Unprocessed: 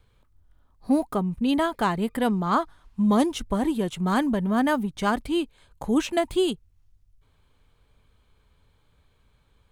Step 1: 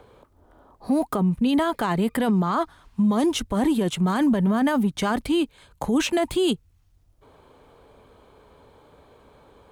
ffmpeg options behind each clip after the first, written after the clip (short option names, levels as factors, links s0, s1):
-filter_complex "[0:a]highpass=f=70:p=1,acrossover=split=290|970|1900[s0][s1][s2][s3];[s1]acompressor=mode=upward:threshold=0.00447:ratio=2.5[s4];[s0][s4][s2][s3]amix=inputs=4:normalize=0,alimiter=limit=0.0841:level=0:latency=1:release=10,volume=2.24"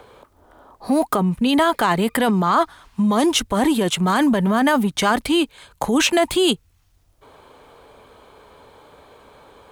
-af "lowshelf=f=430:g=-9,volume=2.82"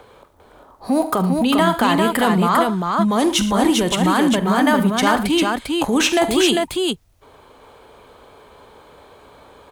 -af "aecho=1:1:45|73|114|399:0.2|0.178|0.141|0.668"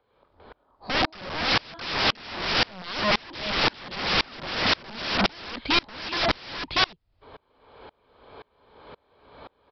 -af "aresample=11025,aeval=exprs='(mod(7.5*val(0)+1,2)-1)/7.5':c=same,aresample=44100,aeval=exprs='val(0)*pow(10,-31*if(lt(mod(-1.9*n/s,1),2*abs(-1.9)/1000),1-mod(-1.9*n/s,1)/(2*abs(-1.9)/1000),(mod(-1.9*n/s,1)-2*abs(-1.9)/1000)/(1-2*abs(-1.9)/1000))/20)':c=same,volume=1.58"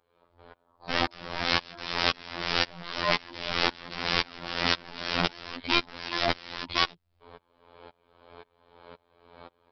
-af "afftfilt=real='hypot(re,im)*cos(PI*b)':imag='0':win_size=2048:overlap=0.75"